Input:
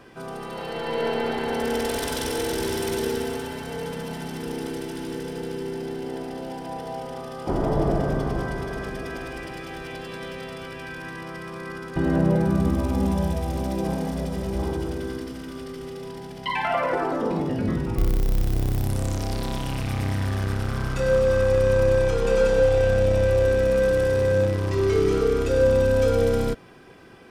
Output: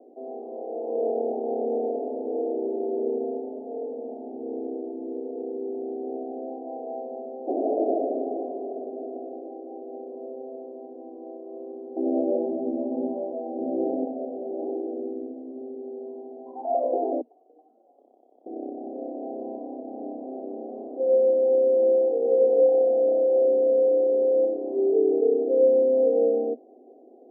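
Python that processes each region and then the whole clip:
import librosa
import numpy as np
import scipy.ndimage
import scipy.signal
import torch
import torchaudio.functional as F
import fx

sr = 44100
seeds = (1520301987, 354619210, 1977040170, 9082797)

y = fx.chain(x, sr, fx.riaa(side='playback'),
    fx.transformer_sat(knee_hz=90.0), at=(13.57, 14.04))
y = fx.chain(y, sr, fx.air_absorb(metres=230.0),
    fx.freq_invert(carrier_hz=3300), at=(17.21, 18.46))
y = scipy.signal.sosfilt(scipy.signal.cheby1(5, 1.0, [240.0, 750.0], 'bandpass', fs=sr, output='sos'), y)
y = fx.tilt_eq(y, sr, slope=2.5)
y = y * 10.0 ** (4.0 / 20.0)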